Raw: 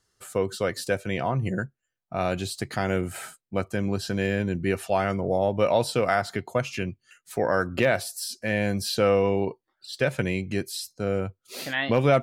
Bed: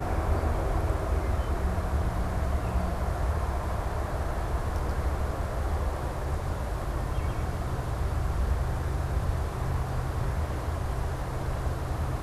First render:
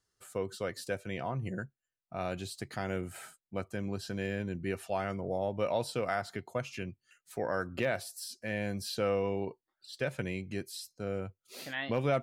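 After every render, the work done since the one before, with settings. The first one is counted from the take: trim -9.5 dB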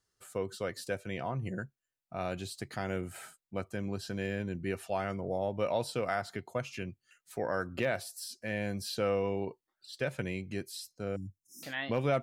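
11.16–11.63 s: brick-wall FIR band-stop 350–5100 Hz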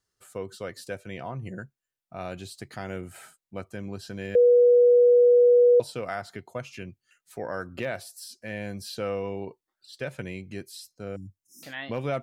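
4.35–5.80 s: bleep 486 Hz -13.5 dBFS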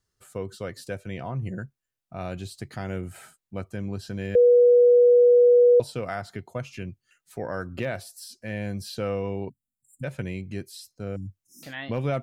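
9.49–10.04 s: spectral selection erased 260–6900 Hz; bass shelf 190 Hz +9 dB

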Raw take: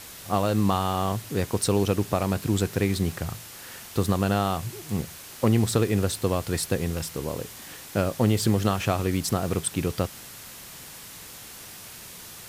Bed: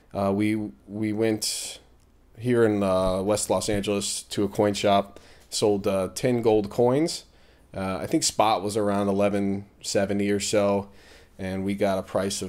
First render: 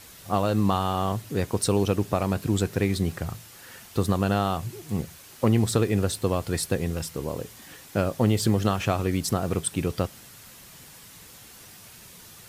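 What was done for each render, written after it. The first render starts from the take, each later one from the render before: noise reduction 6 dB, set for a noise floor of -43 dBFS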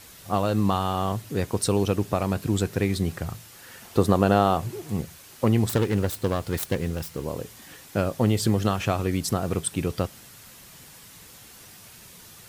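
3.82–4.91 s: peaking EQ 540 Hz +7 dB 2.7 oct; 5.69–7.26 s: self-modulated delay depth 0.31 ms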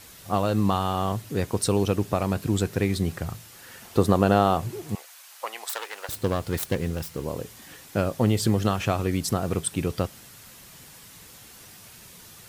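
4.95–6.09 s: high-pass 710 Hz 24 dB/octave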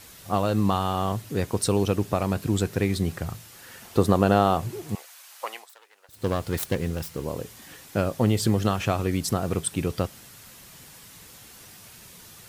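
5.53–6.28 s: dip -20 dB, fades 0.15 s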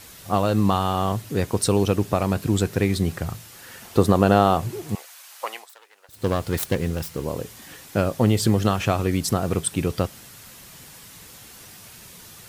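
trim +3 dB; peak limiter -2 dBFS, peak gain reduction 1.5 dB

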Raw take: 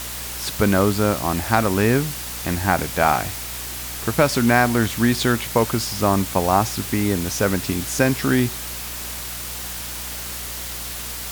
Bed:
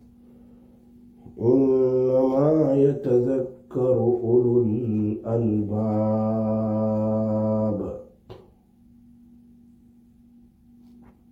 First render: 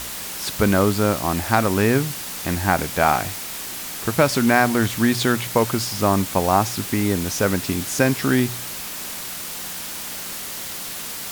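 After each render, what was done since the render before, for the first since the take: de-hum 60 Hz, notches 2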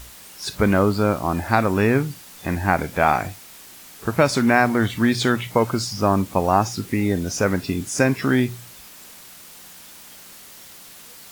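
noise print and reduce 12 dB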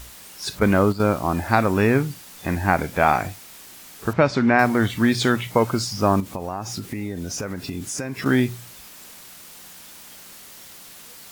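0.59–1.00 s: gate -21 dBFS, range -8 dB; 4.13–4.59 s: distance through air 160 m; 6.20–8.26 s: compression, threshold -25 dBFS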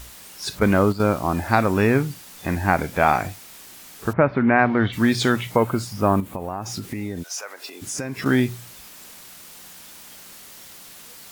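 4.12–4.92 s: low-pass 1.9 kHz -> 4 kHz 24 dB/octave; 5.56–6.66 s: peaking EQ 5.4 kHz -10.5 dB 1 oct; 7.22–7.81 s: high-pass 860 Hz -> 370 Hz 24 dB/octave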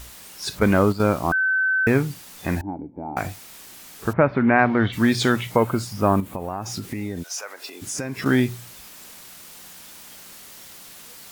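1.32–1.87 s: bleep 1.53 kHz -17.5 dBFS; 2.61–3.17 s: cascade formant filter u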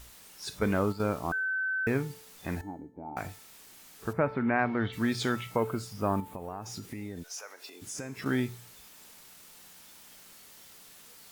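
feedback comb 440 Hz, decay 0.71 s, mix 70%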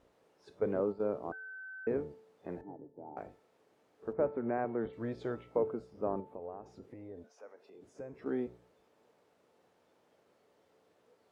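octave divider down 1 oct, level 0 dB; band-pass filter 480 Hz, Q 2.1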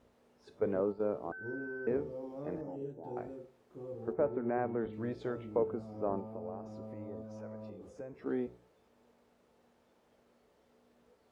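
add bed -23.5 dB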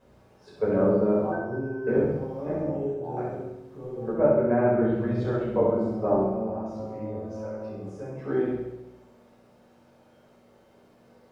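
flutter echo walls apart 11.5 m, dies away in 0.88 s; simulated room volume 450 m³, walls furnished, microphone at 5.3 m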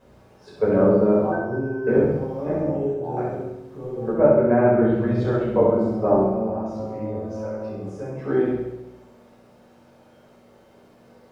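trim +5 dB

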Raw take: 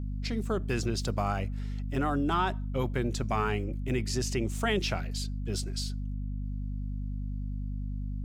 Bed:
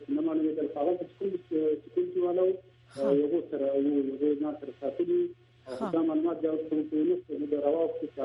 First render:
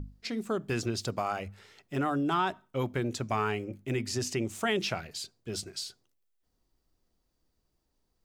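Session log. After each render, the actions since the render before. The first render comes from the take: hum notches 50/100/150/200/250 Hz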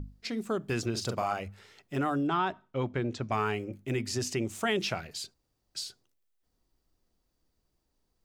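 0.91–1.34 s: doubling 41 ms -6 dB; 2.27–3.32 s: distance through air 120 m; 5.34–5.75 s: room tone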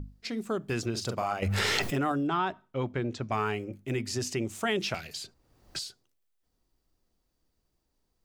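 1.42–2.12 s: level flattener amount 100%; 4.94–5.79 s: three bands compressed up and down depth 100%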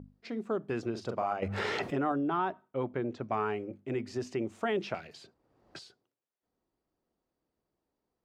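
band-pass filter 530 Hz, Q 0.51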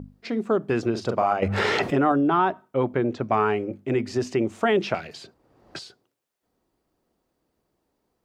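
trim +10 dB

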